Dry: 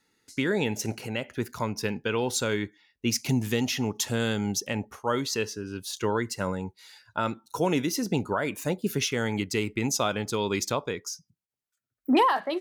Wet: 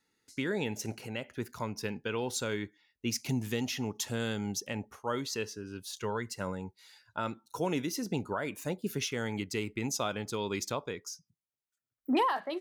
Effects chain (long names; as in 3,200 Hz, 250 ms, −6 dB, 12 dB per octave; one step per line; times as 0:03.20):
0:05.87–0:06.36: parametric band 310 Hz −11.5 dB 0.3 octaves
level −6.5 dB